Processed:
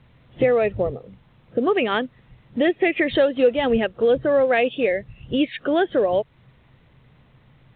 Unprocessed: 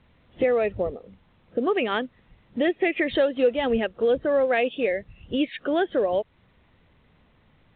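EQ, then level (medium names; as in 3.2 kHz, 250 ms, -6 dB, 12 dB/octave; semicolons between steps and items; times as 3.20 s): peaking EQ 130 Hz +14.5 dB 0.24 oct; +3.5 dB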